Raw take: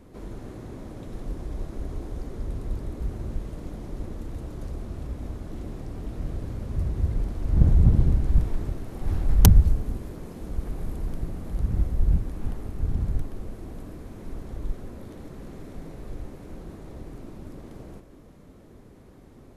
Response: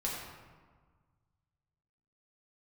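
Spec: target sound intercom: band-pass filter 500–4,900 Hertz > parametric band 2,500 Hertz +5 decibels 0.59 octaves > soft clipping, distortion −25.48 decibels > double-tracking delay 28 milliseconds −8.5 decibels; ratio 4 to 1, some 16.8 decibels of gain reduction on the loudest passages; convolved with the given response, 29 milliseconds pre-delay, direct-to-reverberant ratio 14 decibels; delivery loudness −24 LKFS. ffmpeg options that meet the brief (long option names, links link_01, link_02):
-filter_complex "[0:a]acompressor=threshold=-30dB:ratio=4,asplit=2[link_01][link_02];[1:a]atrim=start_sample=2205,adelay=29[link_03];[link_02][link_03]afir=irnorm=-1:irlink=0,volume=-18dB[link_04];[link_01][link_04]amix=inputs=2:normalize=0,highpass=500,lowpass=4900,equalizer=frequency=2500:width_type=o:width=0.59:gain=5,asoftclip=threshold=-30dB,asplit=2[link_05][link_06];[link_06]adelay=28,volume=-8.5dB[link_07];[link_05][link_07]amix=inputs=2:normalize=0,volume=27dB"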